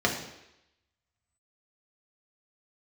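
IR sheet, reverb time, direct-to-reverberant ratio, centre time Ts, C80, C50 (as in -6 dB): 0.85 s, -1.0 dB, 26 ms, 9.5 dB, 7.0 dB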